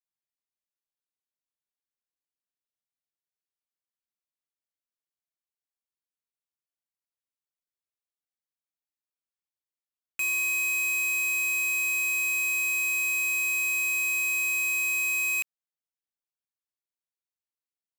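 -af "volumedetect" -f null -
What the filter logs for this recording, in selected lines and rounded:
mean_volume: -32.3 dB
max_volume: -26.9 dB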